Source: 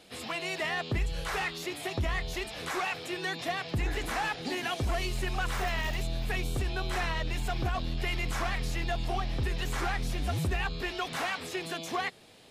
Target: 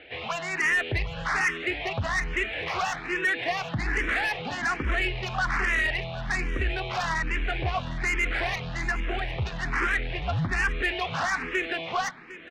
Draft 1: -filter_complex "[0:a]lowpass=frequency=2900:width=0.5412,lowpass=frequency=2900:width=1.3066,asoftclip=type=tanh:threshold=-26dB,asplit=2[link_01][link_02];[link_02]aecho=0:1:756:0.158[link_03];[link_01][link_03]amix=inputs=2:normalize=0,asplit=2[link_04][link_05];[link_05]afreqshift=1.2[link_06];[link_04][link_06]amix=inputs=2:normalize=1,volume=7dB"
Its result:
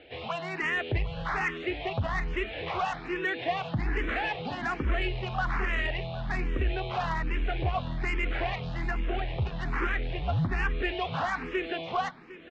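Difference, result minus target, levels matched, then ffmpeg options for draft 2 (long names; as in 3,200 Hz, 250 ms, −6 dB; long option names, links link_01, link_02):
2,000 Hz band −3.0 dB
-filter_complex "[0:a]lowpass=frequency=2900:width=0.5412,lowpass=frequency=2900:width=1.3066,equalizer=frequency=1900:width=0.94:gain=9.5,asoftclip=type=tanh:threshold=-26dB,asplit=2[link_01][link_02];[link_02]aecho=0:1:756:0.158[link_03];[link_01][link_03]amix=inputs=2:normalize=0,asplit=2[link_04][link_05];[link_05]afreqshift=1.2[link_06];[link_04][link_06]amix=inputs=2:normalize=1,volume=7dB"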